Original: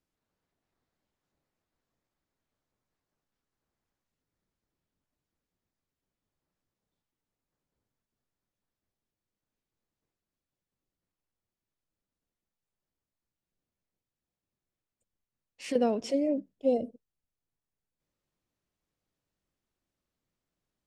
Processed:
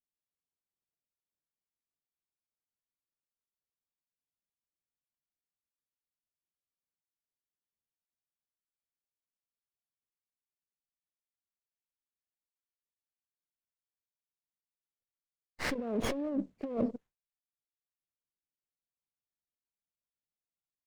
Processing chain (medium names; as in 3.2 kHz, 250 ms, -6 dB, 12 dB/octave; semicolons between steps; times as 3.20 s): knee-point frequency compression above 1.2 kHz 1.5:1; expander -55 dBFS; compressor with a negative ratio -37 dBFS, ratio -1; sliding maximum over 9 samples; trim +3.5 dB